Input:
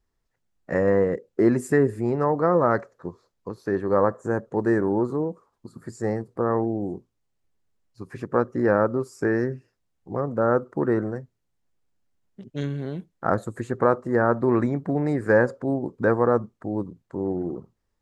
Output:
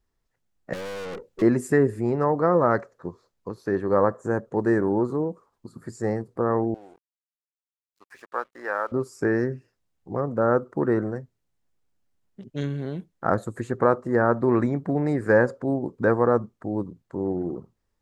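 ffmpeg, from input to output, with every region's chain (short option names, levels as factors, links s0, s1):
-filter_complex "[0:a]asettb=1/sr,asplit=3[s0][s1][s2];[s0]atrim=end=0.734[s3];[s1]atrim=start=0.73:end=1.42,asetpts=PTS-STARTPTS,afade=t=in:d=0.004:c=qsin,afade=t=out:st=0.686:d=0.004:c=qsin,acontrast=60,aeval=exprs='(tanh(44.7*val(0)+0.35)-tanh(0.35))/44.7':c=same[s4];[s2]atrim=start=1.416[s5];[s3][s4]acrossfade=d=0.004:c1=hsin:c2=qsin[s6];[s6][s5]acrossfade=d=0.004:c1=qsin:c2=hsin,asettb=1/sr,asplit=3[s7][s8][s9];[s7]atrim=end=6.744[s10];[s8]atrim=start=6.74:end=8.92,asetpts=PTS-STARTPTS,afade=t=in:d=0.004:c=qsin,afade=t=out:st=2.176:d=0.004:c=qsin,highpass=930,aeval=exprs='sgn(val(0))*max(abs(val(0))-0.0015,0)':c=same[s11];[s9]atrim=start=8.916[s12];[s10][s11]acrossfade=d=0.004:c1=hsin:c2=qsin[s13];[s13][s12]acrossfade=d=0.004:c1=qsin:c2=hsin"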